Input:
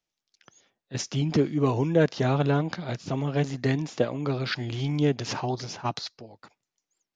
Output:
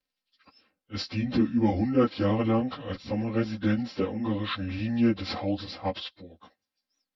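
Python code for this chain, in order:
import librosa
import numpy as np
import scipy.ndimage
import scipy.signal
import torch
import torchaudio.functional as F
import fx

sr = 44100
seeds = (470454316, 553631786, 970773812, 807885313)

y = fx.pitch_bins(x, sr, semitones=-4.0)
y = y + 0.64 * np.pad(y, (int(3.8 * sr / 1000.0), 0))[:len(y)]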